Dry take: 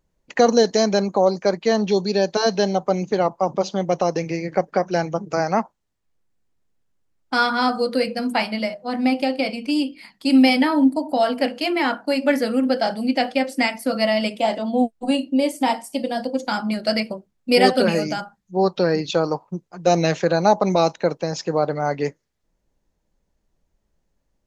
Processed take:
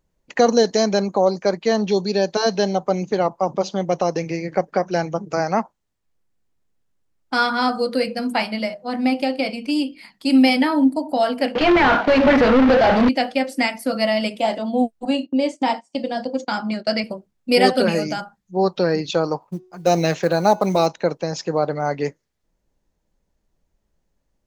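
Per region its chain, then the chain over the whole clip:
11.55–13.09 companded quantiser 4-bit + overdrive pedal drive 34 dB, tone 2400 Hz, clips at -6 dBFS + air absorption 240 m
15.05–17.04 gate -34 dBFS, range -17 dB + elliptic band-pass 100–7000 Hz
19.42–20.87 short-mantissa float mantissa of 4-bit + de-hum 367.7 Hz, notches 19
whole clip: dry

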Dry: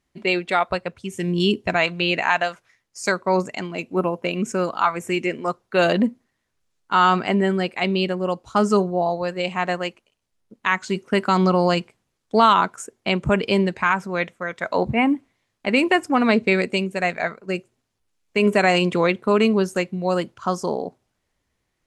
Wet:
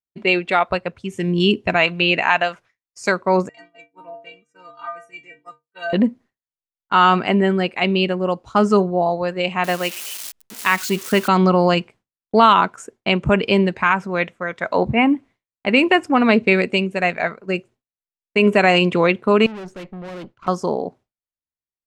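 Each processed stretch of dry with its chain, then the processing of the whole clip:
3.49–5.93 low shelf 290 Hz -9 dB + metallic resonator 140 Hz, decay 0.68 s, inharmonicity 0.03
9.64–11.28 switching spikes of -20 dBFS + high shelf 7400 Hz +5 dB
19.46–20.48 air absorption 87 m + tube stage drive 34 dB, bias 0.7
whole clip: dynamic EQ 2700 Hz, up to +5 dB, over -38 dBFS, Q 4; expander -41 dBFS; high shelf 5900 Hz -11 dB; gain +3 dB

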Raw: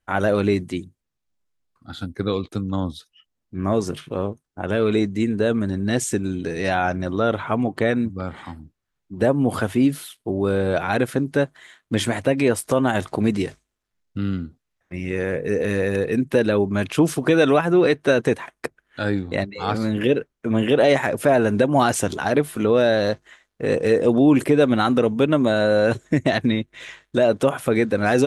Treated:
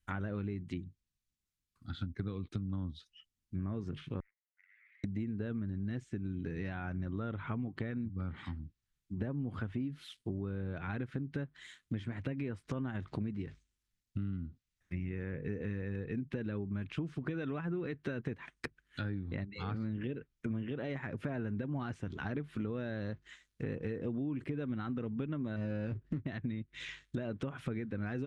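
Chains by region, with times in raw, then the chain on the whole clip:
4.2–5.04 hard clip -21.5 dBFS + Butterworth band-pass 2000 Hz, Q 6.3 + compressor, threshold -55 dBFS
25.56–26.26 median filter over 41 samples + doubler 19 ms -10.5 dB
whole clip: passive tone stack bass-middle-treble 6-0-2; compressor 16:1, threshold -45 dBFS; treble ducked by the level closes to 1600 Hz, closed at -47 dBFS; gain +12 dB

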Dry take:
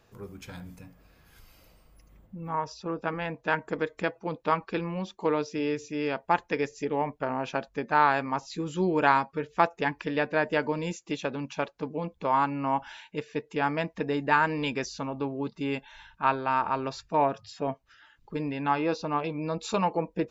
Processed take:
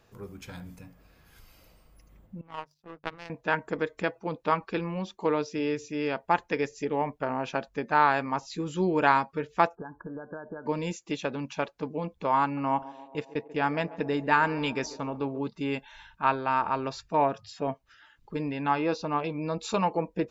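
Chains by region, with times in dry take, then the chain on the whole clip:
2.41–3.3 power-law curve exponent 2 + notches 50/100/150 Hz
9.75–10.66 compressor 16:1, threshold -34 dBFS + brick-wall FIR low-pass 1700 Hz
12.43–15.39 gate -42 dBFS, range -16 dB + narrowing echo 0.139 s, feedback 78%, band-pass 510 Hz, level -15.5 dB
whole clip: dry

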